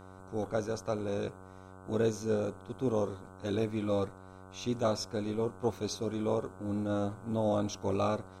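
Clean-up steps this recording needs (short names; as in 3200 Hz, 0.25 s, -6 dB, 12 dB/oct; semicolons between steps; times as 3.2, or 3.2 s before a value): de-hum 94 Hz, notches 16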